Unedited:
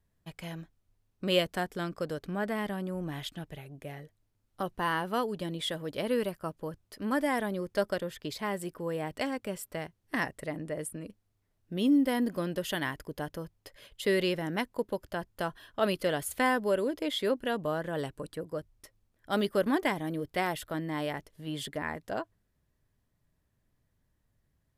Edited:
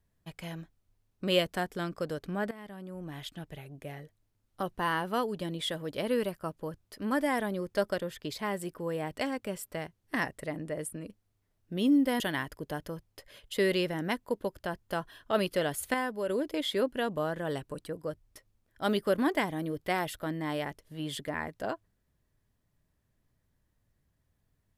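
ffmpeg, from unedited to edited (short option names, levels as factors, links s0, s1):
-filter_complex "[0:a]asplit=5[s0][s1][s2][s3][s4];[s0]atrim=end=2.51,asetpts=PTS-STARTPTS,afade=t=out:st=2.506:d=0.004:c=hsin:silence=0.141254[s5];[s1]atrim=start=2.51:end=12.202,asetpts=PTS-STARTPTS,afade=t=in:d=1.13:silence=0.141254[s6];[s2]atrim=start=12.678:end=16.422[s7];[s3]atrim=start=16.418:end=16.772,asetpts=PTS-STARTPTS,volume=0.531[s8];[s4]atrim=start=16.768[s9];[s5][s6]concat=n=2:v=0:a=1[s10];[s10][s7]acrossfade=d=0.004:c1=hsin:c2=hsin[s11];[s11][s8]acrossfade=d=0.004:c1=hsin:c2=hsin[s12];[s12][s9]acrossfade=d=0.004:c1=hsin:c2=hsin"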